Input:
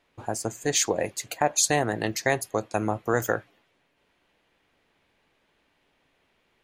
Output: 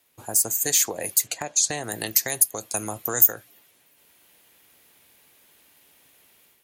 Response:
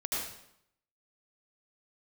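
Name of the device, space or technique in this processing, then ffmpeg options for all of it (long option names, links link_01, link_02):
FM broadcast chain: -filter_complex "[0:a]asettb=1/sr,asplit=3[link_01][link_02][link_03];[link_01]atrim=end=1.274[link_04];[link_02]atrim=start=1.27:end=1.84,asetpts=PTS-STARTPTS,afade=type=in:duration=0.004:curve=qsin,afade=type=out:start_time=0.566:duration=0.004:curve=qsin,lowpass=frequency=7300:width=0.5412,lowpass=frequency=7300:width=1.3066[link_05];[link_03]atrim=start=1.836[link_06];[link_04][link_05]acrossfade=duration=0.004:curve1=hsin:curve2=qsin[link_07];[link_07][link_06]acrossfade=duration=0.004:curve1=qsin:curve2=hsin,highpass=54,dynaudnorm=framelen=430:gausssize=3:maxgain=8.5dB,acrossover=split=540|2900[link_08][link_09][link_10];[link_08]acompressor=threshold=-28dB:ratio=4[link_11];[link_09]acompressor=threshold=-28dB:ratio=4[link_12];[link_10]acompressor=threshold=-30dB:ratio=4[link_13];[link_11][link_12][link_13]amix=inputs=3:normalize=0,aemphasis=mode=production:type=50fm,alimiter=limit=-11dB:level=0:latency=1:release=462,asoftclip=type=hard:threshold=-12.5dB,lowpass=frequency=15000:width=0.5412,lowpass=frequency=15000:width=1.3066,aemphasis=mode=production:type=50fm,volume=-4dB"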